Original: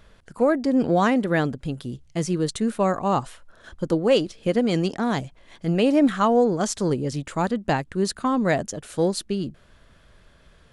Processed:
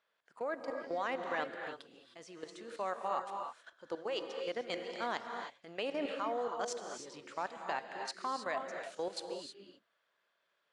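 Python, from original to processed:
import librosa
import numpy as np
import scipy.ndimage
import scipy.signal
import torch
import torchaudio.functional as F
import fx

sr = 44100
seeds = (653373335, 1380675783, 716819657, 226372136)

y = scipy.signal.sosfilt(scipy.signal.butter(2, 670.0, 'highpass', fs=sr, output='sos'), x)
y = fx.level_steps(y, sr, step_db=15)
y = fx.air_absorb(y, sr, metres=86.0)
y = fx.rev_gated(y, sr, seeds[0], gate_ms=340, shape='rising', drr_db=4.0)
y = y * librosa.db_to_amplitude(-5.5)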